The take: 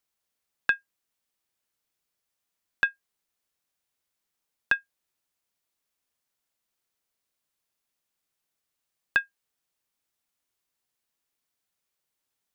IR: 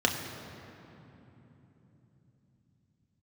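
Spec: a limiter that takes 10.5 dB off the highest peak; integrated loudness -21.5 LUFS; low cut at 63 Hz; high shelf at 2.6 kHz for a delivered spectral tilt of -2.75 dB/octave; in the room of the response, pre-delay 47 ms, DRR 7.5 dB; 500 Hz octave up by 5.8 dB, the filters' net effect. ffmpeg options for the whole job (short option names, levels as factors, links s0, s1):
-filter_complex "[0:a]highpass=63,equalizer=f=500:t=o:g=7,highshelf=f=2600:g=5.5,alimiter=limit=0.141:level=0:latency=1,asplit=2[s0][s1];[1:a]atrim=start_sample=2205,adelay=47[s2];[s1][s2]afir=irnorm=-1:irlink=0,volume=0.106[s3];[s0][s3]amix=inputs=2:normalize=0,volume=5.31"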